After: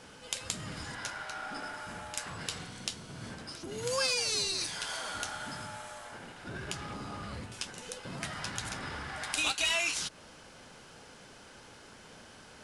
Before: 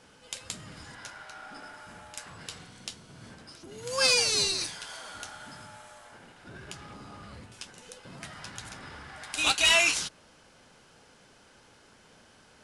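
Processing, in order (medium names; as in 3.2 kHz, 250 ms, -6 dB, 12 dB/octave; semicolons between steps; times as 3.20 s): compression 4:1, threshold -35 dBFS, peak gain reduction 14 dB; trim +5 dB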